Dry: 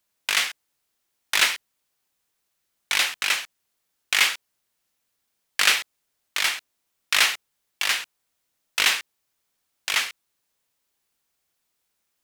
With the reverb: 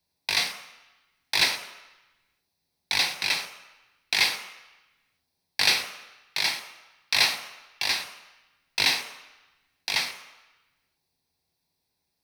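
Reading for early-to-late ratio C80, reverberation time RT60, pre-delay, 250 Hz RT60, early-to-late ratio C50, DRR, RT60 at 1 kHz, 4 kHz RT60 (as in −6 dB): 11.5 dB, 1.0 s, 10 ms, 0.80 s, 9.5 dB, 6.0 dB, 1.1 s, 1.0 s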